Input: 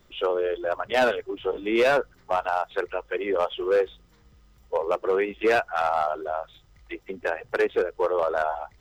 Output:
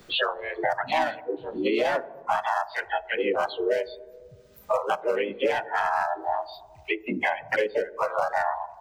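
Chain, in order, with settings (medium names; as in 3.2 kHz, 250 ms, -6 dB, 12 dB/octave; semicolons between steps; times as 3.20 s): spectral noise reduction 20 dB; harmony voices +3 st -6 dB, +4 st -1 dB; on a send at -16 dB: reverberation RT60 0.85 s, pre-delay 3 ms; on the sum: three bands compressed up and down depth 100%; trim -4 dB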